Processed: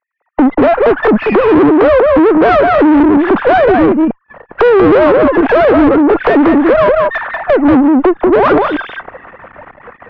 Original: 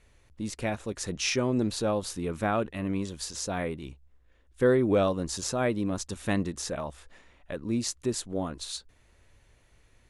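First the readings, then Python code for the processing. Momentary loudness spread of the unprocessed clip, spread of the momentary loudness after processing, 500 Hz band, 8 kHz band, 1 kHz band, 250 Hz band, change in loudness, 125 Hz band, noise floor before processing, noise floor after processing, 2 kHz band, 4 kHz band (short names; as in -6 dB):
13 LU, 6 LU, +22.0 dB, under -20 dB, +24.5 dB, +22.0 dB, +21.0 dB, +8.5 dB, -63 dBFS, -52 dBFS, +21.5 dB, +6.5 dB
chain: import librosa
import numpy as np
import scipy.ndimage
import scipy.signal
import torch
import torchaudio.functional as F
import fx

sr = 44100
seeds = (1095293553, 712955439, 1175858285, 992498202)

p1 = fx.sine_speech(x, sr)
p2 = fx.recorder_agc(p1, sr, target_db=-15.0, rise_db_per_s=68.0, max_gain_db=30)
p3 = p2 + fx.echo_single(p2, sr, ms=188, db=-4.5, dry=0)
p4 = fx.leveller(p3, sr, passes=3)
p5 = fx.backlash(p4, sr, play_db=-28.5)
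p6 = p4 + (p5 * librosa.db_to_amplitude(-9.0))
p7 = scipy.signal.sosfilt(scipy.signal.butter(4, 1500.0, 'lowpass', fs=sr, output='sos'), p6)
p8 = fx.tube_stage(p7, sr, drive_db=11.0, bias=0.5)
y = p8 * librosa.db_to_amplitude(8.0)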